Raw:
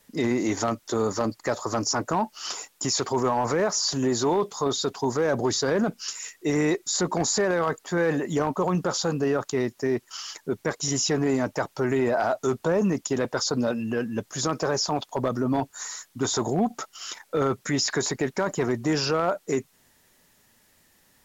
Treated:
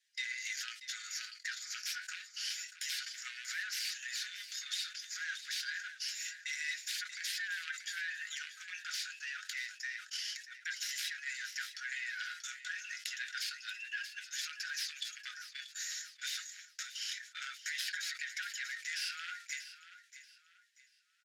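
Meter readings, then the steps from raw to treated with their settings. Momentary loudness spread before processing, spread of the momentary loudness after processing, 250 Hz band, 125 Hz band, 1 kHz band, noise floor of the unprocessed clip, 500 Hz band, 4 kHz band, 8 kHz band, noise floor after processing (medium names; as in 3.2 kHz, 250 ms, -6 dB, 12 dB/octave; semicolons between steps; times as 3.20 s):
6 LU, 6 LU, under -40 dB, under -40 dB, -25.5 dB, -63 dBFS, under -40 dB, -6.5 dB, no reading, -66 dBFS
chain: tracing distortion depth 0.18 ms; steep high-pass 1.5 kHz 96 dB/octave; gate -50 dBFS, range -14 dB; low-pass 5.1 kHz 12 dB/octave; treble shelf 2.4 kHz +9.5 dB; comb 5.5 ms, depth 37%; compression 2.5:1, threshold -34 dBFS, peak gain reduction 7.5 dB; flange 0.28 Hz, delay 5 ms, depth 8.1 ms, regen +65%; on a send: feedback delay 635 ms, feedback 31%, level -13.5 dB; on the sum: decay stretcher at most 120 dB/s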